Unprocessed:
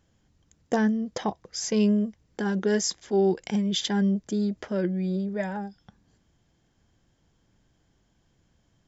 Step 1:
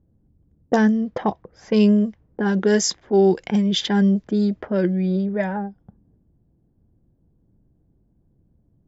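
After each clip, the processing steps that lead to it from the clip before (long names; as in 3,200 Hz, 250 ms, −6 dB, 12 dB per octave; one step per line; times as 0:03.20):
low-pass that shuts in the quiet parts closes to 370 Hz, open at −20 dBFS
level +6.5 dB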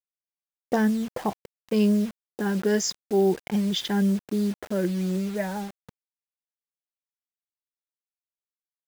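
bit-depth reduction 6 bits, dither none
level −5.5 dB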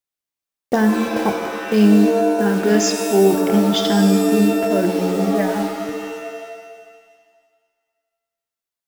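reverb with rising layers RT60 1.7 s, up +7 semitones, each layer −2 dB, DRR 6 dB
level +6 dB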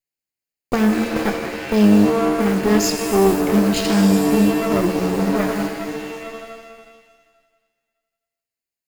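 lower of the sound and its delayed copy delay 0.43 ms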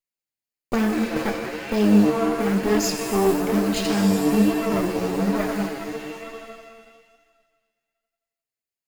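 flanger 1.1 Hz, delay 2.3 ms, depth 7.3 ms, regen +44%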